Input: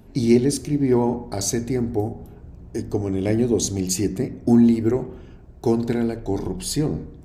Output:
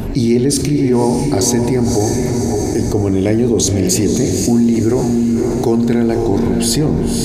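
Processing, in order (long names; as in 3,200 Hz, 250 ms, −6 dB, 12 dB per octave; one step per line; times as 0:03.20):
feedback delay with all-pass diffusion 546 ms, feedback 44%, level −8 dB
envelope flattener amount 70%
level +1 dB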